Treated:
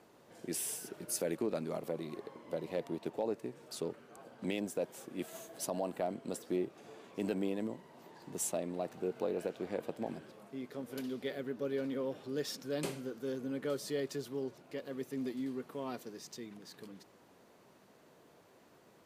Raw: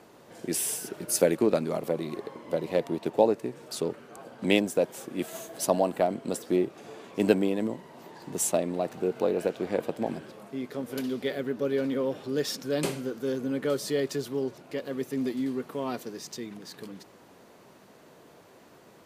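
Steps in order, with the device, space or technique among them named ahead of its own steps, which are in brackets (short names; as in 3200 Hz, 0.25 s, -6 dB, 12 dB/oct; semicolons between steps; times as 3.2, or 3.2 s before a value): clipper into limiter (hard clip -8.5 dBFS, distortion -36 dB; limiter -16 dBFS, peak gain reduction 7.5 dB); gain -8.5 dB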